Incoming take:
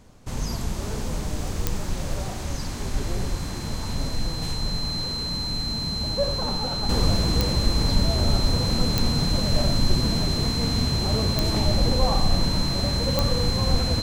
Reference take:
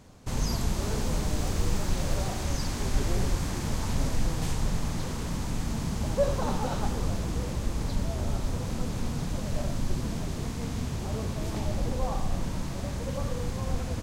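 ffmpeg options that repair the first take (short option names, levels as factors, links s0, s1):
-af "adeclick=t=4,bandreject=f=4100:w=30,agate=range=0.0891:threshold=0.0891,asetnsamples=n=441:p=0,asendcmd='6.89 volume volume -8dB',volume=1"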